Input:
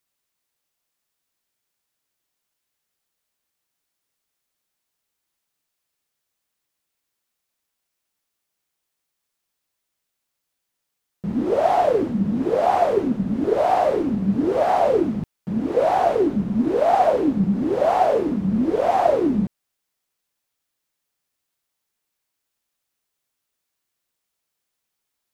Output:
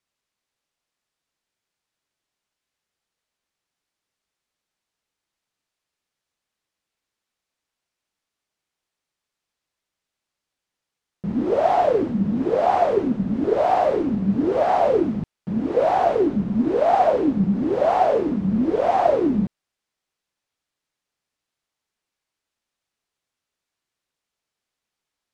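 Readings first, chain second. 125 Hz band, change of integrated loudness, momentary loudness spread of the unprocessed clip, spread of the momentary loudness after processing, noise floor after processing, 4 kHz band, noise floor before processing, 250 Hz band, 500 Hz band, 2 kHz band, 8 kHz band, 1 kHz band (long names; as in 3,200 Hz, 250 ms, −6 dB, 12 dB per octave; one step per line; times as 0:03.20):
0.0 dB, 0.0 dB, 6 LU, 6 LU, −85 dBFS, −1.5 dB, −80 dBFS, 0.0 dB, 0.0 dB, −0.5 dB, can't be measured, 0.0 dB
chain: high-frequency loss of the air 55 metres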